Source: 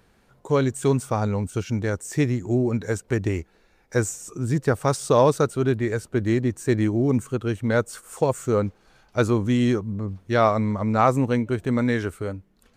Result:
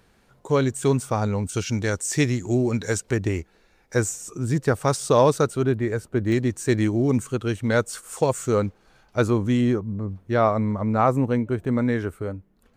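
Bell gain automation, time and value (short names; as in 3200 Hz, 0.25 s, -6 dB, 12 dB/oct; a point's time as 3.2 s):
bell 5600 Hz 2.7 oct
+2 dB
from 1.49 s +9.5 dB
from 3.11 s +2 dB
from 5.63 s -4.5 dB
from 6.32 s +5 dB
from 8.66 s -1.5 dB
from 9.61 s -8 dB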